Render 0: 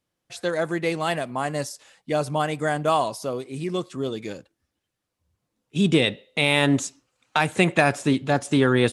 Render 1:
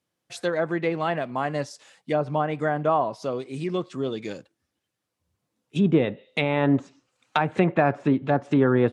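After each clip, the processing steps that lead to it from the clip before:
high-pass filter 95 Hz
treble cut that deepens with the level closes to 1,300 Hz, closed at −18.5 dBFS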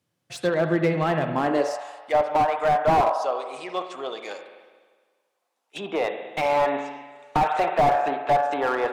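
spring reverb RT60 1.5 s, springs 43/50 ms, chirp 35 ms, DRR 7 dB
high-pass filter sweep 100 Hz → 760 Hz, 0:01.23–0:01.80
slew-rate limiting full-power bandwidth 94 Hz
level +2 dB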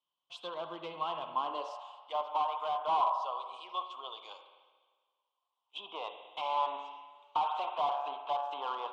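pair of resonant band-passes 1,800 Hz, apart 1.6 octaves

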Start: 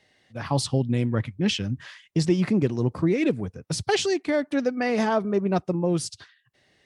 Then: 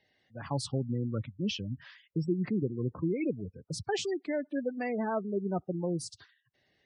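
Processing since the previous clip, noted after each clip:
gate on every frequency bin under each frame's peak −20 dB strong
level −8.5 dB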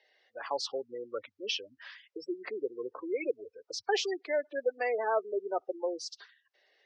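elliptic band-pass filter 440–5,800 Hz, stop band 40 dB
level +4.5 dB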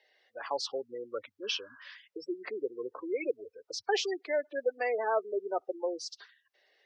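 healed spectral selection 0:01.46–0:01.87, 620–1,700 Hz after

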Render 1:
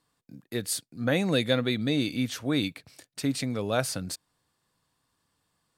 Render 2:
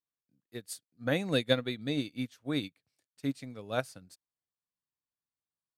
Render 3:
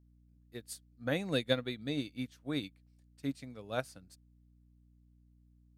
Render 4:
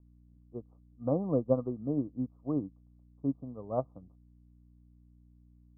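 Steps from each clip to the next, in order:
expander for the loud parts 2.5 to 1, over −39 dBFS
mains hum 60 Hz, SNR 24 dB; level −3.5 dB
Chebyshev low-pass filter 1,200 Hz, order 8; level +5 dB

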